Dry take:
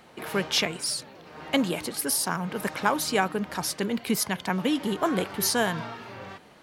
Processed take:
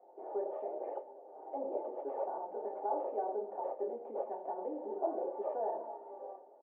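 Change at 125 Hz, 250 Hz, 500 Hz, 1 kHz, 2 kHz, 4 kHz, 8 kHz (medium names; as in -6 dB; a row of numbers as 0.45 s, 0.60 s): under -40 dB, -20.0 dB, -5.5 dB, -8.0 dB, under -35 dB, under -40 dB, under -40 dB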